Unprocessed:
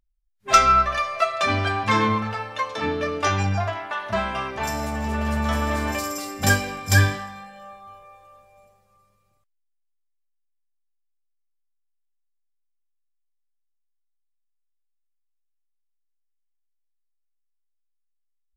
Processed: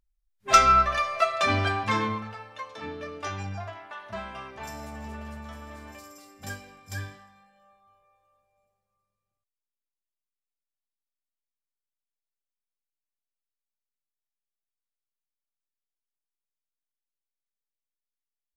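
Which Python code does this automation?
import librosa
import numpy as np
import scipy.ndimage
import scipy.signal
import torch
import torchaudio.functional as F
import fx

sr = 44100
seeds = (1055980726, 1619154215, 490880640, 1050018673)

y = fx.gain(x, sr, db=fx.line((1.66, -2.0), (2.37, -12.0), (5.06, -12.0), (5.55, -19.0)))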